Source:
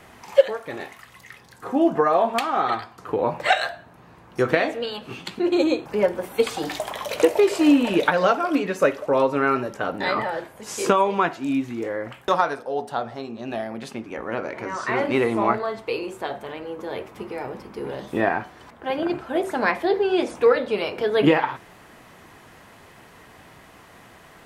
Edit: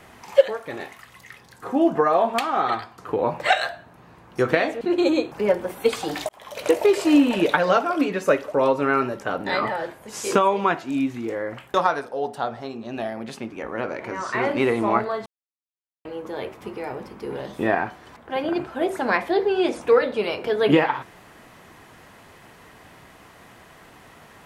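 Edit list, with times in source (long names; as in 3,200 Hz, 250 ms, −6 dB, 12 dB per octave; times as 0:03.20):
0:04.81–0:05.35: remove
0:06.83–0:07.34: fade in
0:15.80–0:16.59: silence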